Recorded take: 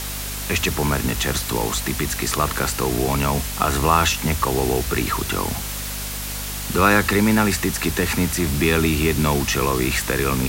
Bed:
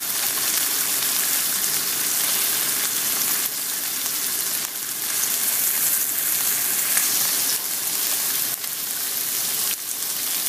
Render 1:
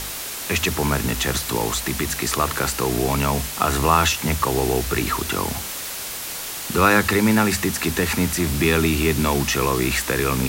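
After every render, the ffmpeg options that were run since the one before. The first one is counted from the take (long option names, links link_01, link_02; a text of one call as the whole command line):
ffmpeg -i in.wav -af "bandreject=frequency=50:width_type=h:width=4,bandreject=frequency=100:width_type=h:width=4,bandreject=frequency=150:width_type=h:width=4,bandreject=frequency=200:width_type=h:width=4,bandreject=frequency=250:width_type=h:width=4" out.wav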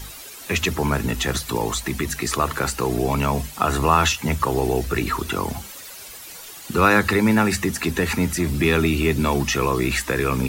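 ffmpeg -i in.wav -af "afftdn=noise_reduction=12:noise_floor=-31" out.wav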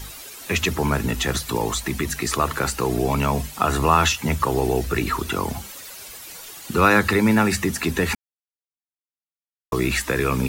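ffmpeg -i in.wav -filter_complex "[0:a]asplit=3[link_01][link_02][link_03];[link_01]atrim=end=8.15,asetpts=PTS-STARTPTS,afade=type=out:start_time=8.146:duration=0.004:curve=hsin[link_04];[link_02]atrim=start=8.15:end=9.72,asetpts=PTS-STARTPTS,volume=0[link_05];[link_03]atrim=start=9.72,asetpts=PTS-STARTPTS,afade=type=in:duration=0.004:curve=hsin[link_06];[link_04][link_05][link_06]concat=n=3:v=0:a=1" out.wav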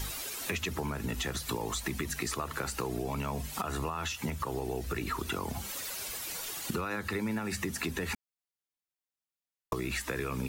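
ffmpeg -i in.wav -af "alimiter=limit=-14dB:level=0:latency=1:release=379,acompressor=threshold=-31dB:ratio=6" out.wav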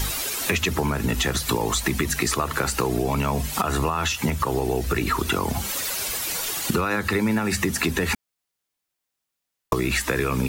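ffmpeg -i in.wav -af "volume=11dB" out.wav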